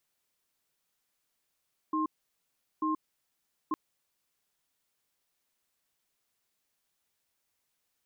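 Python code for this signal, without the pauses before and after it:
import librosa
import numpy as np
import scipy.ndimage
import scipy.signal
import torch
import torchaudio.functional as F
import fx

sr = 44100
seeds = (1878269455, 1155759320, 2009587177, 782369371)

y = fx.cadence(sr, length_s=1.81, low_hz=312.0, high_hz=1060.0, on_s=0.13, off_s=0.76, level_db=-29.5)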